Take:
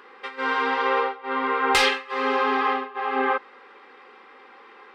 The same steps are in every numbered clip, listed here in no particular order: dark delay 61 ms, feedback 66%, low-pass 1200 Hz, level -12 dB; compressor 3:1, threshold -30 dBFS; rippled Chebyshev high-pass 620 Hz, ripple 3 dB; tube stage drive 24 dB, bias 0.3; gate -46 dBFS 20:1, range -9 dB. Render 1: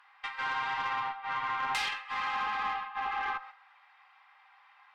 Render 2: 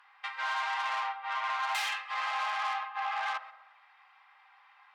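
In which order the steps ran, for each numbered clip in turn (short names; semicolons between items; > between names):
rippled Chebyshev high-pass > compressor > dark delay > gate > tube stage; tube stage > rippled Chebyshev high-pass > gate > compressor > dark delay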